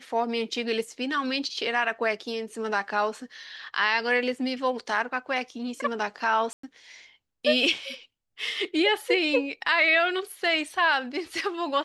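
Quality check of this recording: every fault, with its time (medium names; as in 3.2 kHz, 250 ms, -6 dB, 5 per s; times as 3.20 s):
6.53–6.63 s: dropout 104 ms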